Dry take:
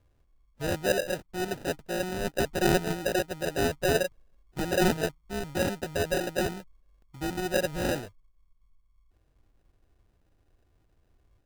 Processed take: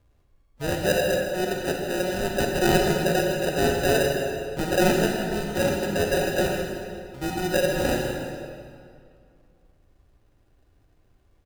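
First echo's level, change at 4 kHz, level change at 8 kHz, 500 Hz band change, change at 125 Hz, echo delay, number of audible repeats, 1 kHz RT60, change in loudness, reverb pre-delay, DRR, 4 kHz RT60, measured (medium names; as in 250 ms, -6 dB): -12.5 dB, +5.0 dB, +4.5 dB, +6.0 dB, +5.0 dB, 159 ms, 1, 2.3 s, +5.0 dB, 32 ms, 0.5 dB, 1.7 s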